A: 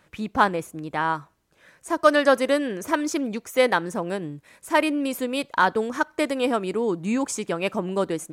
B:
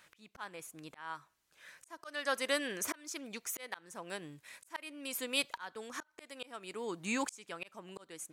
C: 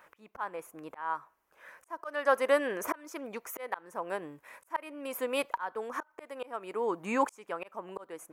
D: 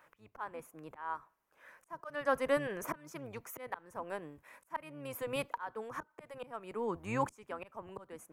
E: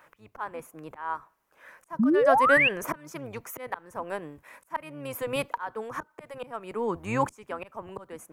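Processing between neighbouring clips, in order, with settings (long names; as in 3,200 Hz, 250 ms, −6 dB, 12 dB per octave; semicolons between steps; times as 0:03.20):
tilt shelving filter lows −8.5 dB, about 900 Hz; volume swells 790 ms; level −5.5 dB
octave-band graphic EQ 125/500/1,000/4,000/8,000 Hz −7/+6/+8/−12/−9 dB; level +3 dB
sub-octave generator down 1 octave, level −2 dB; level −5.5 dB
sound drawn into the spectrogram rise, 0:01.99–0:02.69, 200–2,900 Hz −28 dBFS; level +7 dB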